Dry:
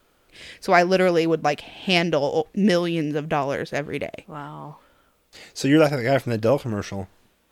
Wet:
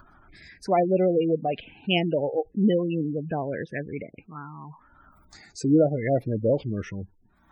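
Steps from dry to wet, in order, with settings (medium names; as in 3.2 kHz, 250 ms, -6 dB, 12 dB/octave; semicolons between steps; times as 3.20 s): upward compressor, threshold -36 dBFS; spectral gate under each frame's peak -15 dB strong; touch-sensitive phaser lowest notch 470 Hz, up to 1.6 kHz, full sweep at -16.5 dBFS; trim -1.5 dB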